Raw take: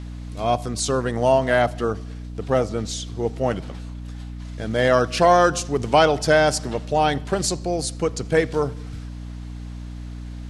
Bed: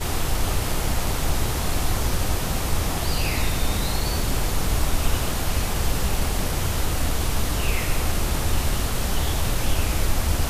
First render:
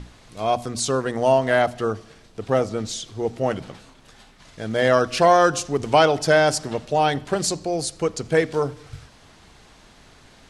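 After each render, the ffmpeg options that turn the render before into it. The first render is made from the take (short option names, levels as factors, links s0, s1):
-af "bandreject=f=60:t=h:w=6,bandreject=f=120:t=h:w=6,bandreject=f=180:t=h:w=6,bandreject=f=240:t=h:w=6,bandreject=f=300:t=h:w=6"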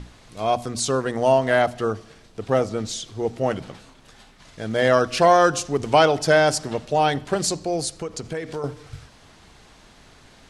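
-filter_complex "[0:a]asettb=1/sr,asplit=3[s0][s1][s2];[s0]atrim=end=7.984[s3];[s1]atrim=start=7.98:end=8.64,asetpts=PTS-STARTPTS,afade=t=in:d=0.004:c=qsin,afade=t=out:st=0.656:d=0.004:c=qsin,acompressor=threshold=0.0501:ratio=5:attack=3.2:release=140:knee=1:detection=peak[s4];[s2]atrim=start=8.636[s5];[s3][s4]acrossfade=d=0.004:c1=hsin:c2=qsin[s6];[s6][s5]acrossfade=d=0.004:c1=qsin:c2=hsin"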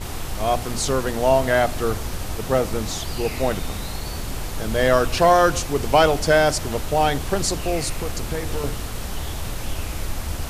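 -filter_complex "[1:a]volume=0.531[s0];[0:a][s0]amix=inputs=2:normalize=0"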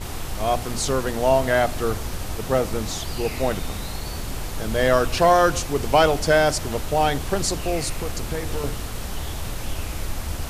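-af "volume=0.891"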